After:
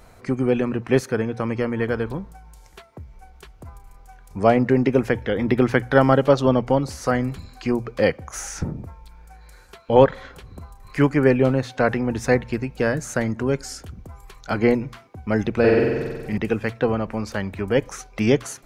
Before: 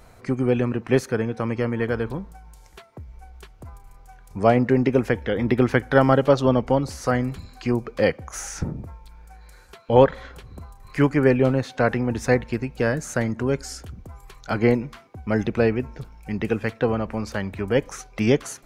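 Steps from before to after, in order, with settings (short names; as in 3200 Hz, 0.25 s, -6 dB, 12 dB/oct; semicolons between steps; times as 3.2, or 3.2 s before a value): notches 60/120 Hz; 15.59–16.38 flutter echo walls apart 8 m, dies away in 1.4 s; gain +1 dB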